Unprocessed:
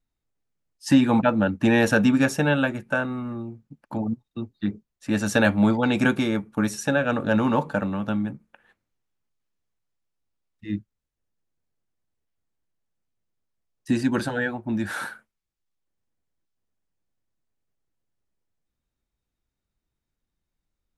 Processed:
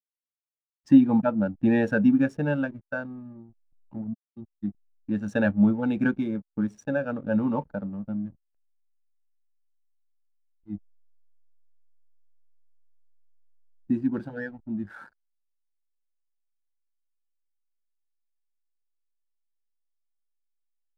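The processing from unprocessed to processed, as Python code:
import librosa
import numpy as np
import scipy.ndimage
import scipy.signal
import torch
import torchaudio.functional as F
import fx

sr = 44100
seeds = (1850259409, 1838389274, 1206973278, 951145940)

y = fx.high_shelf(x, sr, hz=fx.line((7.74, 4100.0), (8.16, 2500.0)), db=-12.0, at=(7.74, 8.16), fade=0.02)
y = fx.backlash(y, sr, play_db=-28.5)
y = fx.spectral_expand(y, sr, expansion=1.5)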